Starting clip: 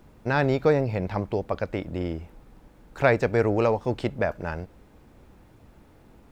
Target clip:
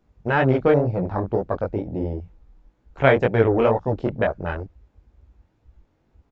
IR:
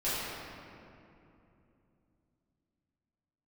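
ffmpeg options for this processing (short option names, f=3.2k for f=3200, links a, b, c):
-af "flanger=delay=15.5:depth=7.1:speed=2.1,afwtdn=0.0141,aresample=16000,aresample=44100,volume=7dB"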